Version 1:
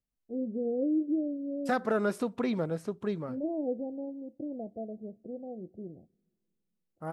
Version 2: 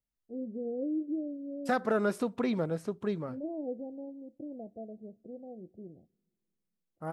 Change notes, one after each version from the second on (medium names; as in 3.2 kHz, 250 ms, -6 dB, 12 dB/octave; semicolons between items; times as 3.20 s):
first voice -4.5 dB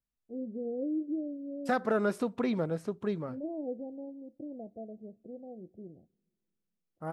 master: add treble shelf 5.1 kHz -3 dB